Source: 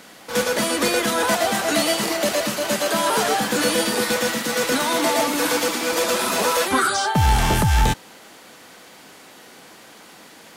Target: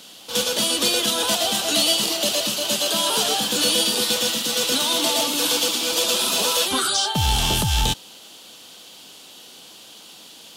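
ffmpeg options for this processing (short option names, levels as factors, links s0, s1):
-af "highshelf=f=2500:t=q:w=3:g=7,volume=0.596"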